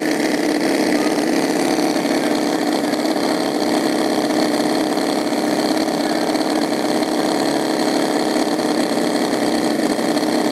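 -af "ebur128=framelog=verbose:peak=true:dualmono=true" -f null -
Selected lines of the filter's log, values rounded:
Integrated loudness:
  I:         -15.1 LUFS
  Threshold: -25.1 LUFS
Loudness range:
  LRA:         0.5 LU
  Threshold: -35.2 LUFS
  LRA low:   -15.4 LUFS
  LRA high:  -14.9 LUFS
True peak:
  Peak:       -4.4 dBFS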